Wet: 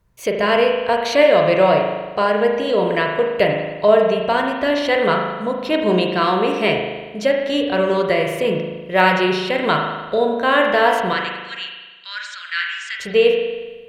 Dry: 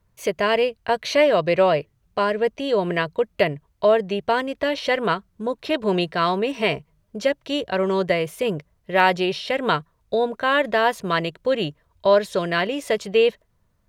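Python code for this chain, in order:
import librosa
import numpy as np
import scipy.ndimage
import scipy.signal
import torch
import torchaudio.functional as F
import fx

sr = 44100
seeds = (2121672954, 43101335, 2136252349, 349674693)

y = fx.cheby1_bandpass(x, sr, low_hz=1400.0, high_hz=7700.0, order=4, at=(11.13, 13.0))
y = fx.rev_spring(y, sr, rt60_s=1.3, pass_ms=(38,), chirp_ms=60, drr_db=1.0)
y = y * librosa.db_to_amplitude(2.0)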